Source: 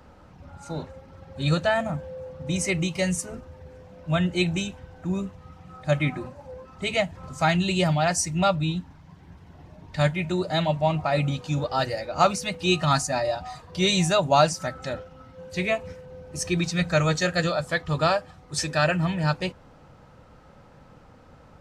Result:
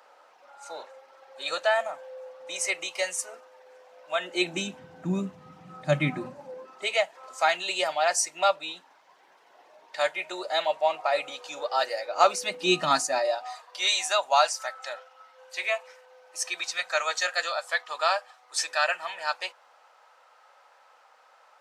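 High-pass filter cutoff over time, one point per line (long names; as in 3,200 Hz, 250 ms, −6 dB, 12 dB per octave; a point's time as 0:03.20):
high-pass filter 24 dB per octave
0:04.15 550 Hz
0:04.83 150 Hz
0:06.34 150 Hz
0:06.93 500 Hz
0:12.05 500 Hz
0:12.78 220 Hz
0:13.69 700 Hz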